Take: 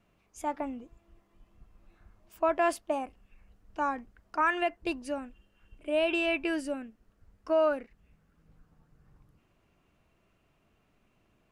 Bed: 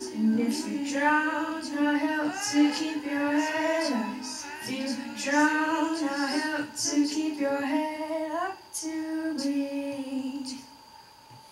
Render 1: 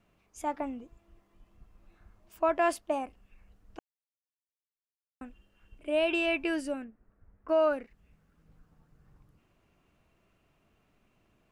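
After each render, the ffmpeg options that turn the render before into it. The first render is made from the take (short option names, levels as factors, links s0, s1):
-filter_complex "[0:a]asettb=1/sr,asplit=3[s0][s1][s2];[s0]atrim=end=6.844[s3];[s1]atrim=start=6.84:end=7.49,asetpts=PTS-STARTPTS,afade=t=in:d=0.004:c=qsin,afade=t=out:st=0.646:d=0.004:c=qsin,lowpass=f=2000:w=0.5412,lowpass=f=2000:w=1.3066[s4];[s2]atrim=start=7.486[s5];[s3][s4]acrossfade=d=0.004:c1=hsin:c2=qsin[s6];[s6][s5]acrossfade=d=0.004:c1=qsin:c2=hsin,asplit=3[s7][s8][s9];[s7]atrim=end=3.79,asetpts=PTS-STARTPTS,afade=t=out:st=3.786:d=0.004:c=hsin[s10];[s8]atrim=start=3.79:end=5.21,asetpts=PTS-STARTPTS,volume=0[s11];[s9]atrim=start=5.21,asetpts=PTS-STARTPTS,afade=t=in:d=0.004:c=hsin[s12];[s10][s11][s12]concat=n=3:v=0:a=1"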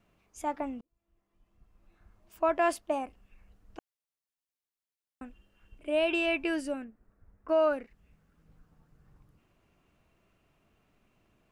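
-filter_complex "[0:a]asplit=2[s0][s1];[s0]atrim=end=0.81,asetpts=PTS-STARTPTS,afade=t=out:st=0.806:d=0.004:c=hsin[s2];[s1]atrim=start=0.81,asetpts=PTS-STARTPTS,afade=t=in:d=1.67[s3];[s2][s3]concat=n=2:v=0:a=1"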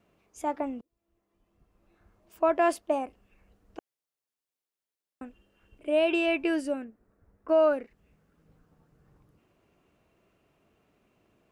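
-af "highpass=f=62:p=1,equalizer=f=430:w=0.96:g=5.5"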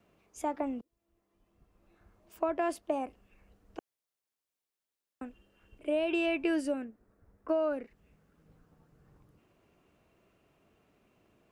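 -filter_complex "[0:a]acrossover=split=270[s0][s1];[s1]acompressor=threshold=0.0355:ratio=5[s2];[s0][s2]amix=inputs=2:normalize=0"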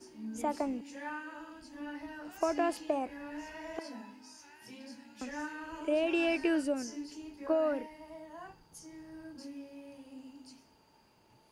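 -filter_complex "[1:a]volume=0.133[s0];[0:a][s0]amix=inputs=2:normalize=0"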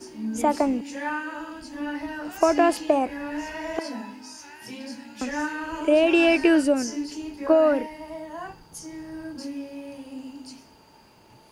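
-af "volume=3.76"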